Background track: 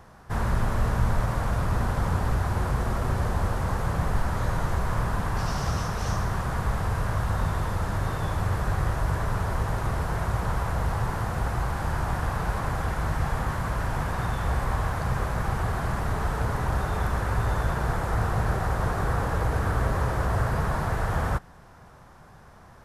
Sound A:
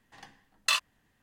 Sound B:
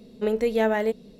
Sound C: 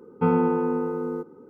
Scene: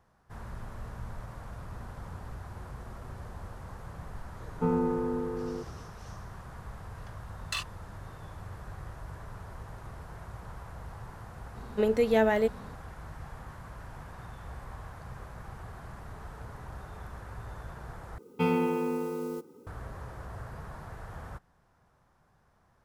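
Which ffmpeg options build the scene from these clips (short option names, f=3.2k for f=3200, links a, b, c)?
-filter_complex "[3:a]asplit=2[a][b];[0:a]volume=-17dB[c];[a]tiltshelf=f=1.5k:g=4.5[d];[b]aexciter=amount=9:drive=5.3:freq=2.2k[e];[c]asplit=2[f][g];[f]atrim=end=18.184[h];[e]atrim=end=1.49,asetpts=PTS-STARTPTS,volume=-6dB[i];[g]atrim=start=19.666[j];[d]atrim=end=1.49,asetpts=PTS-STARTPTS,volume=-10.5dB,afade=t=in:d=0.004:c=hsin,afade=t=out:st=1.486:d=0.004:c=hsin,adelay=4400[k];[1:a]atrim=end=1.22,asetpts=PTS-STARTPTS,volume=-8.5dB,afade=t=in:d=0.004:c=hsin,afade=t=out:st=1.216:d=0.004:c=hsin,adelay=6840[l];[2:a]atrim=end=1.19,asetpts=PTS-STARTPTS,volume=-1.5dB,afade=t=in:d=0.004:c=hsin,afade=t=out:st=1.186:d=0.004:c=hsin,adelay=11560[m];[h][i]acrossfade=d=0.004:c1=hsin:c2=hsin[n];[n][j]acrossfade=d=0.004:c1=hsin:c2=hsin[o];[o][k][l][m]amix=inputs=4:normalize=0"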